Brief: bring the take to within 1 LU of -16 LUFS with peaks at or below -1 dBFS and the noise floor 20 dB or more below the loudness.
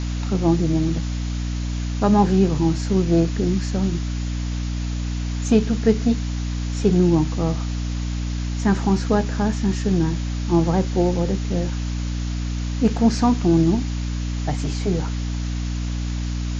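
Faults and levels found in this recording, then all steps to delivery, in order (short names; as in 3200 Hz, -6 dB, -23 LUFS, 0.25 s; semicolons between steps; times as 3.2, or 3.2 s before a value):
hum 60 Hz; harmonics up to 300 Hz; hum level -22 dBFS; noise floor -25 dBFS; noise floor target -42 dBFS; loudness -22.0 LUFS; peak -4.0 dBFS; loudness target -16.0 LUFS
-> de-hum 60 Hz, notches 5; denoiser 17 dB, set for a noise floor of -25 dBFS; gain +6 dB; limiter -1 dBFS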